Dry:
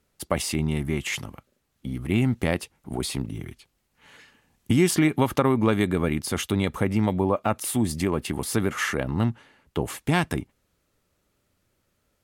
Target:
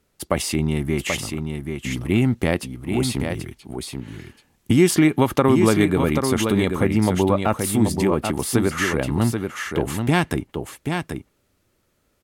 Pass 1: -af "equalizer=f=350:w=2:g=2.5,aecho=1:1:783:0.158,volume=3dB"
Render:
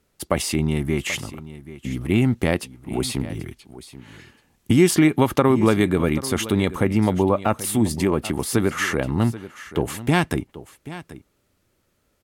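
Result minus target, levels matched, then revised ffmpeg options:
echo-to-direct -10 dB
-af "equalizer=f=350:w=2:g=2.5,aecho=1:1:783:0.501,volume=3dB"

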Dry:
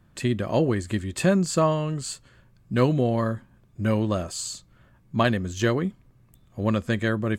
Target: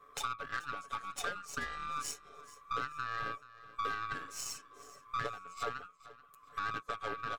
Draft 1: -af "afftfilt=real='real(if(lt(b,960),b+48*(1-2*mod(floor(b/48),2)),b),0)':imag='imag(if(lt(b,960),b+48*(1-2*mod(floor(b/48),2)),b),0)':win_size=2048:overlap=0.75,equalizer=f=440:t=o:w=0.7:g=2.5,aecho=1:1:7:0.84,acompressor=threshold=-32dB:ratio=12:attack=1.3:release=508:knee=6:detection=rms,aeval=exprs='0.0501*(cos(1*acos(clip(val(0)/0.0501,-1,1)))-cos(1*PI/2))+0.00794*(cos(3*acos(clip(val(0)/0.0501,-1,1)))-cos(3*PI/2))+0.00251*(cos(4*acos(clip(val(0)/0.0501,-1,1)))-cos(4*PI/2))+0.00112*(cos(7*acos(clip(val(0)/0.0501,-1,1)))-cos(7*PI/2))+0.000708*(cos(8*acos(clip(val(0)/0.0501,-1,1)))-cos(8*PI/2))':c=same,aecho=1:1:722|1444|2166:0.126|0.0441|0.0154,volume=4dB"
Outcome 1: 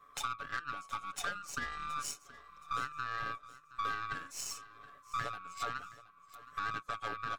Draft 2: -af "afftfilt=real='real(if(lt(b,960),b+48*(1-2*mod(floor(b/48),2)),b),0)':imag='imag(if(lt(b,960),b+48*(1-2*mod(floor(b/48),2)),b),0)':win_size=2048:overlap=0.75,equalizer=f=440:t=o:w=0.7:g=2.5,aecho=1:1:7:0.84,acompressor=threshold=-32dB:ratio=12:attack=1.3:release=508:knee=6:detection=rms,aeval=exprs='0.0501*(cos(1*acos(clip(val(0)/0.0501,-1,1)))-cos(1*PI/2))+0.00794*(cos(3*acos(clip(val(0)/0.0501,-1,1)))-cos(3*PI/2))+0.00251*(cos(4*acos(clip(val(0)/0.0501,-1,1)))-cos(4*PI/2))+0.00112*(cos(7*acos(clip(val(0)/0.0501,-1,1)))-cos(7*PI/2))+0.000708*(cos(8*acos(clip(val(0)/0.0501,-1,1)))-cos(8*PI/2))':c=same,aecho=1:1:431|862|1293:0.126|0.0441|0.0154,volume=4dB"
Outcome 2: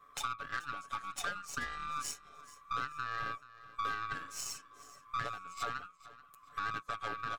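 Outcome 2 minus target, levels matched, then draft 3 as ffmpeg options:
500 Hz band -5.0 dB
-af "afftfilt=real='real(if(lt(b,960),b+48*(1-2*mod(floor(b/48),2)),b),0)':imag='imag(if(lt(b,960),b+48*(1-2*mod(floor(b/48),2)),b),0)':win_size=2048:overlap=0.75,equalizer=f=440:t=o:w=0.7:g=12.5,aecho=1:1:7:0.84,acompressor=threshold=-32dB:ratio=12:attack=1.3:release=508:knee=6:detection=rms,aeval=exprs='0.0501*(cos(1*acos(clip(val(0)/0.0501,-1,1)))-cos(1*PI/2))+0.00794*(cos(3*acos(clip(val(0)/0.0501,-1,1)))-cos(3*PI/2))+0.00251*(cos(4*acos(clip(val(0)/0.0501,-1,1)))-cos(4*PI/2))+0.00112*(cos(7*acos(clip(val(0)/0.0501,-1,1)))-cos(7*PI/2))+0.000708*(cos(8*acos(clip(val(0)/0.0501,-1,1)))-cos(8*PI/2))':c=same,aecho=1:1:431|862|1293:0.126|0.0441|0.0154,volume=4dB"

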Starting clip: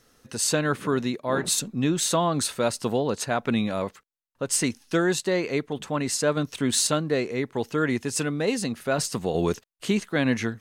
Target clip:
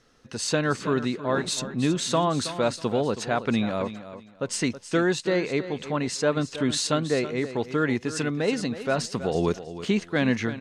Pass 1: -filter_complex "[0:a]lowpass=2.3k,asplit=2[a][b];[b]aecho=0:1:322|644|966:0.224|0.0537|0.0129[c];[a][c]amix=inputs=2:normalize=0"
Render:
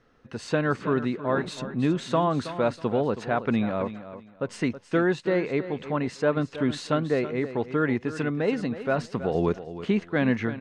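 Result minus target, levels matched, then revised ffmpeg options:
8000 Hz band -14.5 dB
-filter_complex "[0:a]lowpass=5.7k,asplit=2[a][b];[b]aecho=0:1:322|644|966:0.224|0.0537|0.0129[c];[a][c]amix=inputs=2:normalize=0"

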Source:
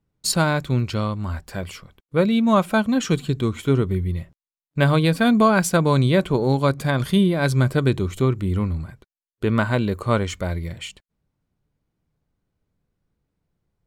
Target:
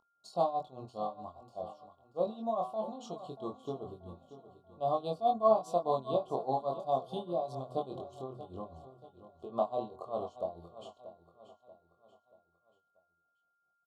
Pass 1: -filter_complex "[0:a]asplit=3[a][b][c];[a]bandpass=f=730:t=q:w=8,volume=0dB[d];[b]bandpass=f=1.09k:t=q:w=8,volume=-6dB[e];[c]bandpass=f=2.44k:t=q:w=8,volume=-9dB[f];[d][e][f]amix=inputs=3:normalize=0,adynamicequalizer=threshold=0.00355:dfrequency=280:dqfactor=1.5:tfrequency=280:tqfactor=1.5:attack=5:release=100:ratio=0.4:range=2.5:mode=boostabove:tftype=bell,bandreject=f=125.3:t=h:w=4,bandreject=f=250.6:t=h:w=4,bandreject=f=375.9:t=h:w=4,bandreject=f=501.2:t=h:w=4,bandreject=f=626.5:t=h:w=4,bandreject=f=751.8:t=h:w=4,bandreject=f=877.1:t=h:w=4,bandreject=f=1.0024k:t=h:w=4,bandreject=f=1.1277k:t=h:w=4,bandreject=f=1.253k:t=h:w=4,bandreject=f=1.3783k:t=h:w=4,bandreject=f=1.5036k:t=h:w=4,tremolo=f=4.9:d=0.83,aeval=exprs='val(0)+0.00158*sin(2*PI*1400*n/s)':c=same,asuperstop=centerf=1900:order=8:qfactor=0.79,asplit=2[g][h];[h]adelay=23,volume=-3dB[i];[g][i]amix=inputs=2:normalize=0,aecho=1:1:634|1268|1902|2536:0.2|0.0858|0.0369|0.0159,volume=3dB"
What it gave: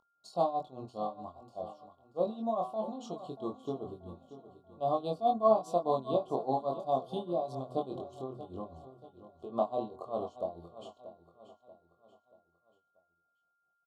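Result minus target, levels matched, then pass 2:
250 Hz band +2.5 dB
-filter_complex "[0:a]asplit=3[a][b][c];[a]bandpass=f=730:t=q:w=8,volume=0dB[d];[b]bandpass=f=1.09k:t=q:w=8,volume=-6dB[e];[c]bandpass=f=2.44k:t=q:w=8,volume=-9dB[f];[d][e][f]amix=inputs=3:normalize=0,bandreject=f=125.3:t=h:w=4,bandreject=f=250.6:t=h:w=4,bandreject=f=375.9:t=h:w=4,bandreject=f=501.2:t=h:w=4,bandreject=f=626.5:t=h:w=4,bandreject=f=751.8:t=h:w=4,bandreject=f=877.1:t=h:w=4,bandreject=f=1.0024k:t=h:w=4,bandreject=f=1.1277k:t=h:w=4,bandreject=f=1.253k:t=h:w=4,bandreject=f=1.3783k:t=h:w=4,bandreject=f=1.5036k:t=h:w=4,tremolo=f=4.9:d=0.83,aeval=exprs='val(0)+0.00158*sin(2*PI*1400*n/s)':c=same,asuperstop=centerf=1900:order=8:qfactor=0.79,asplit=2[g][h];[h]adelay=23,volume=-3dB[i];[g][i]amix=inputs=2:normalize=0,aecho=1:1:634|1268|1902|2536:0.2|0.0858|0.0369|0.0159,volume=3dB"

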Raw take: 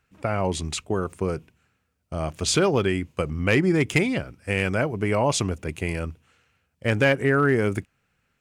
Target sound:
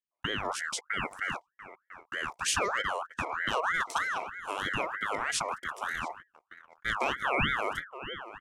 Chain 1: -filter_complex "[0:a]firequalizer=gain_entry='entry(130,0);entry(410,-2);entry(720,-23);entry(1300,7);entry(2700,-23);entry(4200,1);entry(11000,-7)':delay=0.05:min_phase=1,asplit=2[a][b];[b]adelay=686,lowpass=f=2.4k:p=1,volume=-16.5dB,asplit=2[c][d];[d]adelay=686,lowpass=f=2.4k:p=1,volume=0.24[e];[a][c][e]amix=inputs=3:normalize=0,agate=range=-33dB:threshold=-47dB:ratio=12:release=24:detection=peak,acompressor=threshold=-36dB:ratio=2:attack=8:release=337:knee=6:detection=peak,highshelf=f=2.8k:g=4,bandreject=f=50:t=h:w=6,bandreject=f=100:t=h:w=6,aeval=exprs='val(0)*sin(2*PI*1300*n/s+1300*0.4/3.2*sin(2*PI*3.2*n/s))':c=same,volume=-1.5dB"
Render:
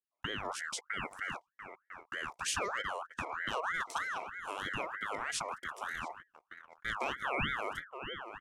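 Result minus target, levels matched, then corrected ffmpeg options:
compressor: peak gain reduction +6 dB
-filter_complex "[0:a]firequalizer=gain_entry='entry(130,0);entry(410,-2);entry(720,-23);entry(1300,7);entry(2700,-23);entry(4200,1);entry(11000,-7)':delay=0.05:min_phase=1,asplit=2[a][b];[b]adelay=686,lowpass=f=2.4k:p=1,volume=-16.5dB,asplit=2[c][d];[d]adelay=686,lowpass=f=2.4k:p=1,volume=0.24[e];[a][c][e]amix=inputs=3:normalize=0,agate=range=-33dB:threshold=-47dB:ratio=12:release=24:detection=peak,acompressor=threshold=-24dB:ratio=2:attack=8:release=337:knee=6:detection=peak,highshelf=f=2.8k:g=4,bandreject=f=50:t=h:w=6,bandreject=f=100:t=h:w=6,aeval=exprs='val(0)*sin(2*PI*1300*n/s+1300*0.4/3.2*sin(2*PI*3.2*n/s))':c=same,volume=-1.5dB"

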